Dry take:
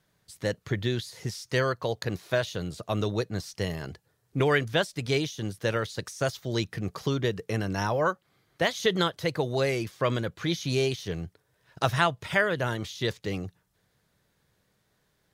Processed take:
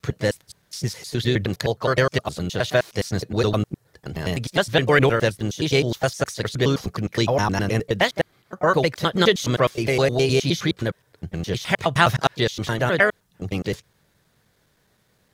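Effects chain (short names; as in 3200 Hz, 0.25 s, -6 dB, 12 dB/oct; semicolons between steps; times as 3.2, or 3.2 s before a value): slices in reverse order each 0.104 s, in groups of 7; harmoniser +3 st -14 dB; gain +7 dB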